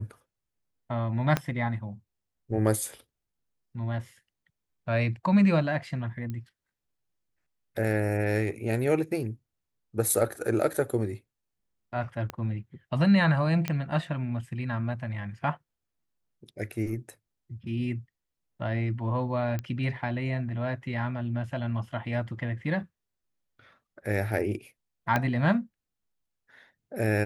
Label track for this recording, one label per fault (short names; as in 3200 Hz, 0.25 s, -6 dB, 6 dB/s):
1.370000	1.370000	pop -11 dBFS
6.300000	6.300000	pop -24 dBFS
12.300000	12.300000	pop -19 dBFS
13.680000	13.680000	pop -14 dBFS
19.590000	19.590000	pop -19 dBFS
25.160000	25.160000	pop -12 dBFS